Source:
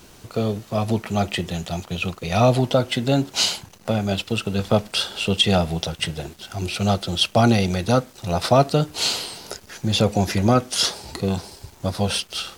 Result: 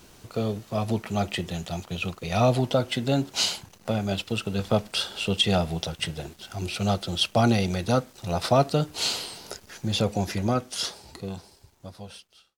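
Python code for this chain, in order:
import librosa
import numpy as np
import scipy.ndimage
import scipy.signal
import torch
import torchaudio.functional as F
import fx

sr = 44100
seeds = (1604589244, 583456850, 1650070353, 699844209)

y = fx.fade_out_tail(x, sr, length_s=2.99)
y = F.gain(torch.from_numpy(y), -4.5).numpy()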